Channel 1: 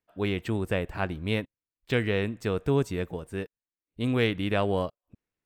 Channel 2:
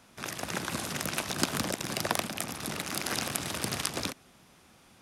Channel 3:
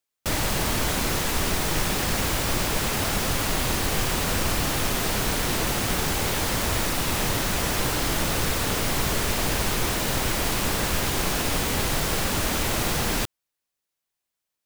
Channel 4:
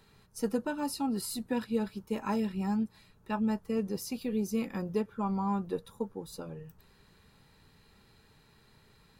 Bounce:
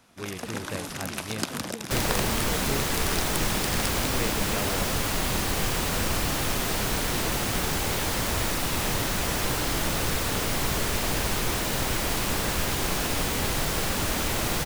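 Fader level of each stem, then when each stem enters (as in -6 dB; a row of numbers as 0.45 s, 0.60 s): -8.5 dB, -1.5 dB, -2.0 dB, -11.0 dB; 0.00 s, 0.00 s, 1.65 s, 0.00 s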